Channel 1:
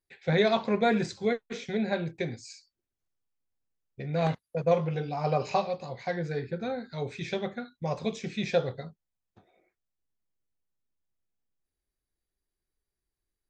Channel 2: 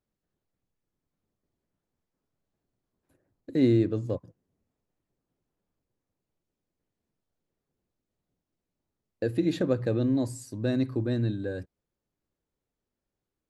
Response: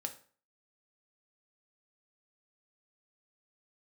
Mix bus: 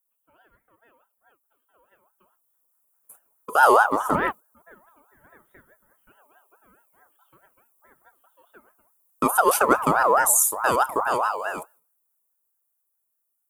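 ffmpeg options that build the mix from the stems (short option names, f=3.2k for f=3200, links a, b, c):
-filter_complex "[0:a]lowpass=f=2.1k:w=0.5412,lowpass=f=2.1k:w=1.3066,volume=-4dB[a];[1:a]aexciter=amount=14.6:drive=9:freq=8.3k,agate=range=-7dB:threshold=-57dB:ratio=16:detection=peak,volume=-0.5dB,asplit=3[b][c][d];[c]volume=-16dB[e];[d]apad=whole_len=595177[f];[a][f]sidechaingate=range=-30dB:threshold=-45dB:ratio=16:detection=peak[g];[2:a]atrim=start_sample=2205[h];[e][h]afir=irnorm=-1:irlink=0[i];[g][b][i]amix=inputs=3:normalize=0,highpass=100,dynaudnorm=f=590:g=9:m=12dB,aeval=exprs='val(0)*sin(2*PI*950*n/s+950*0.25/4.7*sin(2*PI*4.7*n/s))':c=same"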